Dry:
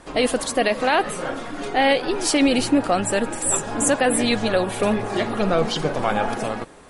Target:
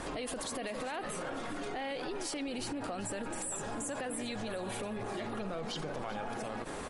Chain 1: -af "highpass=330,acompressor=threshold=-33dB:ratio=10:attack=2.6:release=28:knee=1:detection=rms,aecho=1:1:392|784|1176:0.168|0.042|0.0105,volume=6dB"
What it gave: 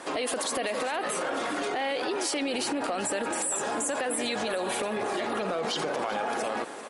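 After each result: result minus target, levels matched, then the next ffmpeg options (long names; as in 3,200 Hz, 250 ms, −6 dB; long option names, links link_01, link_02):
downward compressor: peak gain reduction −9.5 dB; 250 Hz band −3.5 dB
-af "highpass=330,acompressor=threshold=-42.5dB:ratio=10:attack=2.6:release=28:knee=1:detection=rms,aecho=1:1:392|784|1176:0.168|0.042|0.0105,volume=6dB"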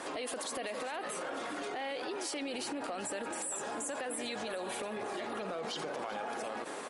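250 Hz band −3.5 dB
-af "acompressor=threshold=-42.5dB:ratio=10:attack=2.6:release=28:knee=1:detection=rms,aecho=1:1:392|784|1176:0.168|0.042|0.0105,volume=6dB"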